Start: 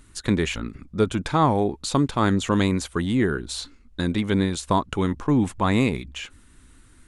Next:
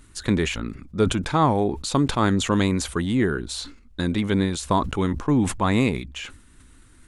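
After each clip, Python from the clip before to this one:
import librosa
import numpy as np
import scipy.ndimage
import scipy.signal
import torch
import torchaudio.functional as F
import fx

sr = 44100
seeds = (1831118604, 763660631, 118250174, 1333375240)

y = fx.sustainer(x, sr, db_per_s=100.0)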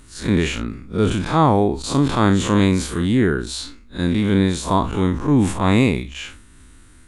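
y = fx.spec_blur(x, sr, span_ms=93.0)
y = y * librosa.db_to_amplitude(6.0)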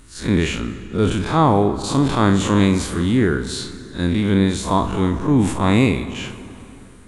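y = fx.rev_plate(x, sr, seeds[0], rt60_s=3.1, hf_ratio=0.65, predelay_ms=0, drr_db=11.0)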